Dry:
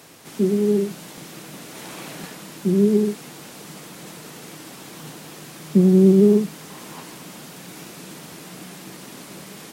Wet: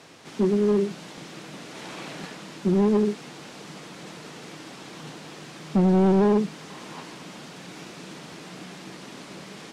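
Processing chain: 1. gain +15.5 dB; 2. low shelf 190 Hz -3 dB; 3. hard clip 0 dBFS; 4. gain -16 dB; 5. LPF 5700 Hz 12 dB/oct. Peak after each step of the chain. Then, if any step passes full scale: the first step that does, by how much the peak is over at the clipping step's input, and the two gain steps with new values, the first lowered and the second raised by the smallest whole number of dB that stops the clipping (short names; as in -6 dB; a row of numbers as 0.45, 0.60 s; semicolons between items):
+10.5, +9.5, 0.0, -16.0, -16.0 dBFS; step 1, 9.5 dB; step 1 +5.5 dB, step 4 -6 dB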